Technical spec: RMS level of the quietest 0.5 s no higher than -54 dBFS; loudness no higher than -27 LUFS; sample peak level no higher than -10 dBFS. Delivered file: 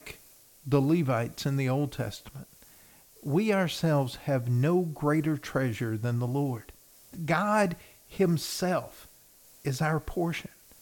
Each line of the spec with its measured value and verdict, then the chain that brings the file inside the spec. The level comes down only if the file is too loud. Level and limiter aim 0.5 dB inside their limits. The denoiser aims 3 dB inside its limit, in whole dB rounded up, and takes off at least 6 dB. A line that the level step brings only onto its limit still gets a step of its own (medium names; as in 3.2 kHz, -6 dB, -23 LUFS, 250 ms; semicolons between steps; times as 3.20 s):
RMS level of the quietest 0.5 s -57 dBFS: pass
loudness -28.5 LUFS: pass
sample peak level -12.5 dBFS: pass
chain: none needed